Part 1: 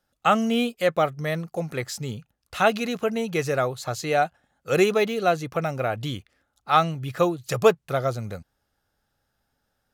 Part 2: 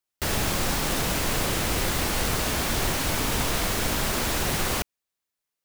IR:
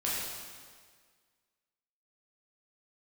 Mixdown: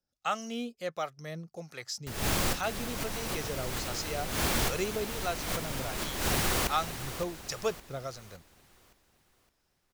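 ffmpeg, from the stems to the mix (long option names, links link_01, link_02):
-filter_complex "[0:a]equalizer=frequency=5400:width=1.7:gain=13,acrossover=split=580[link_01][link_02];[link_01]aeval=exprs='val(0)*(1-0.7/2+0.7/2*cos(2*PI*1.4*n/s))':channel_layout=same[link_03];[link_02]aeval=exprs='val(0)*(1-0.7/2-0.7/2*cos(2*PI*1.4*n/s))':channel_layout=same[link_04];[link_03][link_04]amix=inputs=2:normalize=0,volume=-10.5dB,asplit=2[link_05][link_06];[1:a]adelay=1850,volume=-2.5dB,asplit=2[link_07][link_08];[link_08]volume=-11.5dB[link_09];[link_06]apad=whole_len=330721[link_10];[link_07][link_10]sidechaincompress=threshold=-51dB:ratio=8:attack=8.4:release=131[link_11];[link_09]aecho=0:1:564|1128|1692|2256|2820|3384:1|0.43|0.185|0.0795|0.0342|0.0147[link_12];[link_05][link_11][link_12]amix=inputs=3:normalize=0"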